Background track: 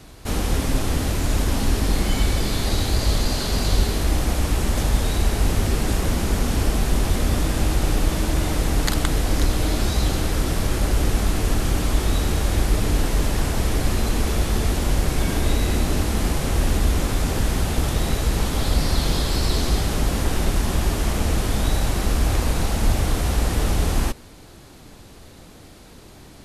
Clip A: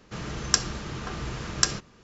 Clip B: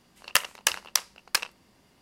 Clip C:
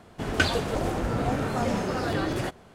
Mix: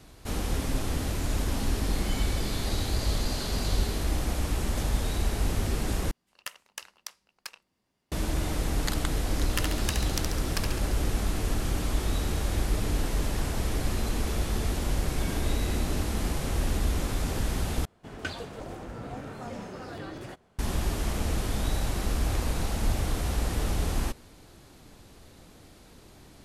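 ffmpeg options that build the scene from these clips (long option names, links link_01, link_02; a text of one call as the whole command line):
ffmpeg -i bed.wav -i cue0.wav -i cue1.wav -i cue2.wav -filter_complex "[2:a]asplit=2[link_01][link_02];[0:a]volume=-7.5dB[link_03];[link_02]aecho=1:1:69|138|207|276|345|414|483|552:0.562|0.321|0.183|0.104|0.0594|0.0338|0.0193|0.011[link_04];[link_03]asplit=3[link_05][link_06][link_07];[link_05]atrim=end=6.114[link_08];[link_01]atrim=end=2.01,asetpts=PTS-STARTPTS,volume=-16.5dB[link_09];[link_06]atrim=start=8.116:end=17.854[link_10];[3:a]atrim=end=2.74,asetpts=PTS-STARTPTS,volume=-12dB[link_11];[link_07]atrim=start=20.586[link_12];[link_04]atrim=end=2.01,asetpts=PTS-STARTPTS,volume=-10dB,afade=type=in:duration=0.004:curve=hsin,afade=type=out:start_time=2.006:duration=0.004:curve=hsin,adelay=406602S[link_13];[link_08][link_09]acrossfade=duration=0.004:curve1=hsin:curve2=hsin[link_14];[link_14][link_10]acrossfade=duration=0.004:curve1=hsin:curve2=hsin[link_15];[link_15][link_11]acrossfade=duration=0.004:curve1=hsin:curve2=hsin[link_16];[link_16][link_12]acrossfade=duration=0.004:curve1=hsin:curve2=hsin[link_17];[link_17][link_13]amix=inputs=2:normalize=0" out.wav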